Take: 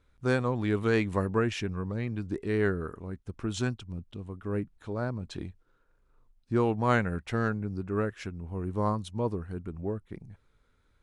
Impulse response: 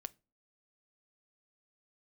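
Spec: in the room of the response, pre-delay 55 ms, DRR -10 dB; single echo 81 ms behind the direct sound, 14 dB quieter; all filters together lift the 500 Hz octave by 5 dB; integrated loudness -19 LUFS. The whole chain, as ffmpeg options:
-filter_complex "[0:a]equalizer=f=500:t=o:g=6,aecho=1:1:81:0.2,asplit=2[a][b];[1:a]atrim=start_sample=2205,adelay=55[c];[b][c]afir=irnorm=-1:irlink=0,volume=14dB[d];[a][d]amix=inputs=2:normalize=0,volume=-1.5dB"

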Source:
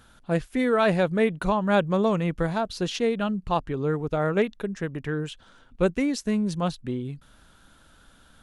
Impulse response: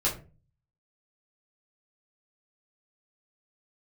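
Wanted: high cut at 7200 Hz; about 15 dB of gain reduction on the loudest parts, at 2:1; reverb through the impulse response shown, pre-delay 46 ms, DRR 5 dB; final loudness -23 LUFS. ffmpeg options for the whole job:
-filter_complex "[0:a]lowpass=7.2k,acompressor=threshold=-46dB:ratio=2,asplit=2[a][b];[1:a]atrim=start_sample=2205,adelay=46[c];[b][c]afir=irnorm=-1:irlink=0,volume=-13.5dB[d];[a][d]amix=inputs=2:normalize=0,volume=14.5dB"

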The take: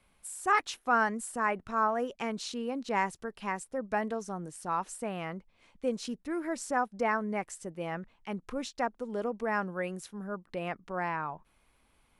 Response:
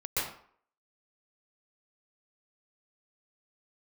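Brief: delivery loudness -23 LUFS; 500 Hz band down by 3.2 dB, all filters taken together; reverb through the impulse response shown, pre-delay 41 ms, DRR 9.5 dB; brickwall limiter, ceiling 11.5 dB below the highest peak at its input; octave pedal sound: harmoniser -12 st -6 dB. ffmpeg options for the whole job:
-filter_complex "[0:a]equalizer=f=500:t=o:g=-4,alimiter=level_in=3.5dB:limit=-24dB:level=0:latency=1,volume=-3.5dB,asplit=2[a][b];[1:a]atrim=start_sample=2205,adelay=41[c];[b][c]afir=irnorm=-1:irlink=0,volume=-17dB[d];[a][d]amix=inputs=2:normalize=0,asplit=2[e][f];[f]asetrate=22050,aresample=44100,atempo=2,volume=-6dB[g];[e][g]amix=inputs=2:normalize=0,volume=14.5dB"

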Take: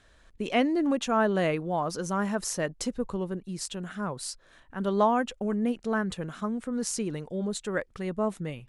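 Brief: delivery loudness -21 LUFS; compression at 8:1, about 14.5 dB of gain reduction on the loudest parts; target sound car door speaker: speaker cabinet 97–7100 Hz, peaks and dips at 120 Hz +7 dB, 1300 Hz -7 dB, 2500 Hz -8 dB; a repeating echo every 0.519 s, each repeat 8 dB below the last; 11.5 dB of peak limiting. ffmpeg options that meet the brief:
-af "acompressor=threshold=-34dB:ratio=8,alimiter=level_in=6.5dB:limit=-24dB:level=0:latency=1,volume=-6.5dB,highpass=97,equalizer=f=120:t=q:w=4:g=7,equalizer=f=1.3k:t=q:w=4:g=-7,equalizer=f=2.5k:t=q:w=4:g=-8,lowpass=f=7.1k:w=0.5412,lowpass=f=7.1k:w=1.3066,aecho=1:1:519|1038|1557|2076|2595:0.398|0.159|0.0637|0.0255|0.0102,volume=18.5dB"

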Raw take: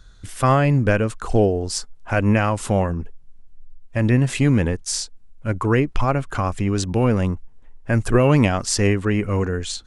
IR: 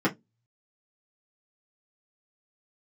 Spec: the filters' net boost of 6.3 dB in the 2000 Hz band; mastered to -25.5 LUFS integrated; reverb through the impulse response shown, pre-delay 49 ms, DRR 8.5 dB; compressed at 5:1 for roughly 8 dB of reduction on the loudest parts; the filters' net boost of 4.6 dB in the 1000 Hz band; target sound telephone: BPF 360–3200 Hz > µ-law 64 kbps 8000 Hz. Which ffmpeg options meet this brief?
-filter_complex "[0:a]equalizer=f=1k:t=o:g=4,equalizer=f=2k:t=o:g=7.5,acompressor=threshold=-19dB:ratio=5,asplit=2[a][b];[1:a]atrim=start_sample=2205,adelay=49[c];[b][c]afir=irnorm=-1:irlink=0,volume=-21dB[d];[a][d]amix=inputs=2:normalize=0,highpass=360,lowpass=3.2k,volume=1dB" -ar 8000 -c:a pcm_mulaw

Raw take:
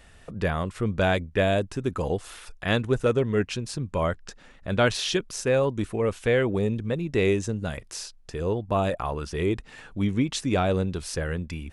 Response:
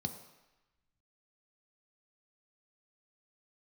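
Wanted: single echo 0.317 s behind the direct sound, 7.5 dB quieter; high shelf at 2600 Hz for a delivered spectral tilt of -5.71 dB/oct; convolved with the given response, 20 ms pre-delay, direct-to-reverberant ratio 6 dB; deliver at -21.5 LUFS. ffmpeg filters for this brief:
-filter_complex "[0:a]highshelf=f=2.6k:g=5,aecho=1:1:317:0.422,asplit=2[a][b];[1:a]atrim=start_sample=2205,adelay=20[c];[b][c]afir=irnorm=-1:irlink=0,volume=-6dB[d];[a][d]amix=inputs=2:normalize=0,volume=0.5dB"

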